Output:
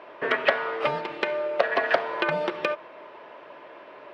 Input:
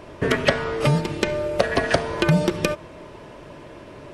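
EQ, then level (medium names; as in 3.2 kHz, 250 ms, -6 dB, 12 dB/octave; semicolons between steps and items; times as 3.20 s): high-pass 660 Hz 12 dB/octave; distance through air 370 m; +3.0 dB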